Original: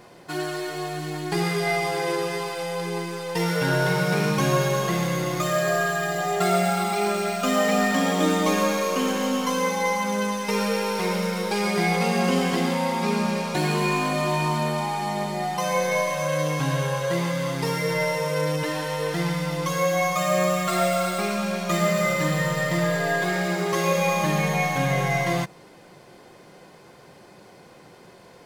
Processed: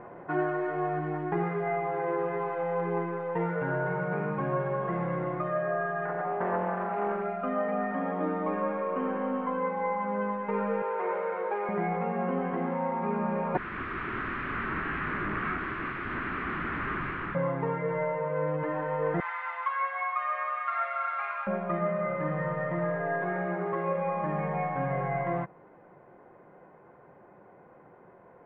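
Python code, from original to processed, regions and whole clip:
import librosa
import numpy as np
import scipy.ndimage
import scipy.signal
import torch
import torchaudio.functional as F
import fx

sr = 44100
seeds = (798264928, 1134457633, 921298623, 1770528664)

y = fx.chain(x, sr, fx.brickwall_lowpass(high_hz=9600.0),
    fx.doppler_dist(depth_ms=0.39), at=(6.05, 7.24))
y = fx.chain(y, sr, fx.highpass(hz=350.0, slope=24),
    fx.transformer_sat(knee_hz=890.0), at=(10.82, 11.69))
y = fx.chain(y, sr, fx.overflow_wrap(gain_db=25.0),
    fx.band_shelf(hz=660.0, db=-16.0, octaves=1.2), at=(13.57, 17.35))
y = fx.chain(y, sr, fx.highpass(hz=980.0, slope=24),
    fx.tilt_eq(slope=2.5), at=(19.2, 21.47))
y = scipy.signal.sosfilt(scipy.signal.bessel(6, 1100.0, 'lowpass', norm='mag', fs=sr, output='sos'), y)
y = fx.low_shelf(y, sr, hz=470.0, db=-8.5)
y = fx.rider(y, sr, range_db=10, speed_s=0.5)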